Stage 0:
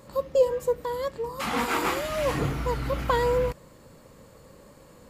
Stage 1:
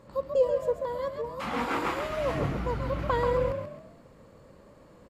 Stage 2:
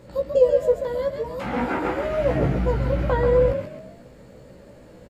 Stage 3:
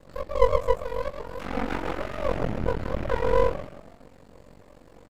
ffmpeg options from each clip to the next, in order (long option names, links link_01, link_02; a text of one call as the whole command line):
ffmpeg -i in.wav -filter_complex "[0:a]lowpass=frequency=2400:poles=1,asplit=2[link_01][link_02];[link_02]asplit=4[link_03][link_04][link_05][link_06];[link_03]adelay=135,afreqshift=45,volume=-6.5dB[link_07];[link_04]adelay=270,afreqshift=90,volume=-15.6dB[link_08];[link_05]adelay=405,afreqshift=135,volume=-24.7dB[link_09];[link_06]adelay=540,afreqshift=180,volume=-33.9dB[link_10];[link_07][link_08][link_09][link_10]amix=inputs=4:normalize=0[link_11];[link_01][link_11]amix=inputs=2:normalize=0,volume=-3dB" out.wav
ffmpeg -i in.wav -filter_complex "[0:a]equalizer=frequency=1100:width_type=o:width=0.35:gain=-12,acrossover=split=1800[link_01][link_02];[link_02]acompressor=threshold=-54dB:ratio=6[link_03];[link_01][link_03]amix=inputs=2:normalize=0,asplit=2[link_04][link_05];[link_05]adelay=16,volume=-4dB[link_06];[link_04][link_06]amix=inputs=2:normalize=0,volume=6.5dB" out.wav
ffmpeg -i in.wav -filter_complex "[0:a]asplit=2[link_01][link_02];[link_02]adelay=12,volume=-3.5dB[link_03];[link_01][link_03]amix=inputs=2:normalize=0,aeval=exprs='val(0)*sin(2*PI*23*n/s)':channel_layout=same,aeval=exprs='max(val(0),0)':channel_layout=same" out.wav